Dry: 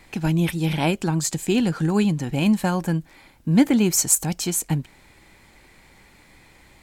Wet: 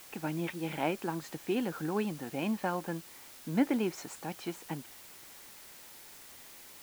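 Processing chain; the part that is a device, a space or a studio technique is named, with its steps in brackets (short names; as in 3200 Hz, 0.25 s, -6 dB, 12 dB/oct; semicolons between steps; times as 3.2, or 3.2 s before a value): wax cylinder (BPF 310–2200 Hz; wow and flutter; white noise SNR 16 dB); gain -7 dB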